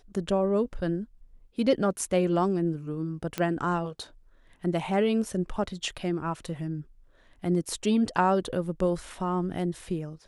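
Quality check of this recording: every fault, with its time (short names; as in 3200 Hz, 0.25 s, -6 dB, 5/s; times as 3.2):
3.38 pop -14 dBFS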